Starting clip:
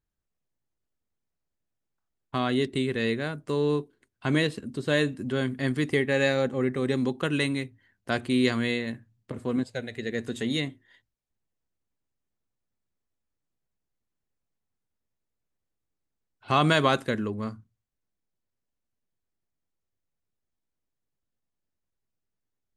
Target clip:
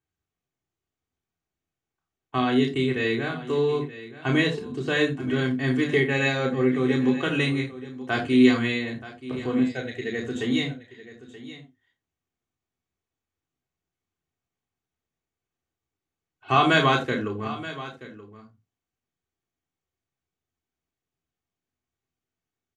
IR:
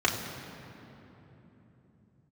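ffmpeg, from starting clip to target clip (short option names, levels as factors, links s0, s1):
-filter_complex "[0:a]aecho=1:1:928:0.168[s0];[1:a]atrim=start_sample=2205,atrim=end_sample=3969[s1];[s0][s1]afir=irnorm=-1:irlink=0,volume=0.355"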